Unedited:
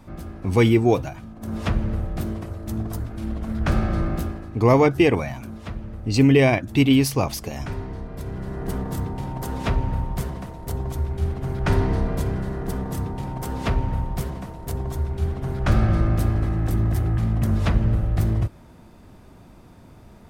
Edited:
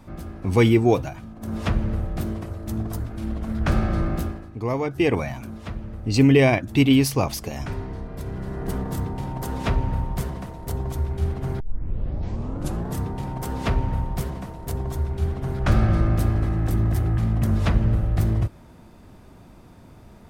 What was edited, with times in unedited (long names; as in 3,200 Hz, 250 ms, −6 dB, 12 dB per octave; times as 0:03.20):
0:04.27–0:05.21: duck −9.5 dB, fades 0.34 s
0:11.60: tape start 1.36 s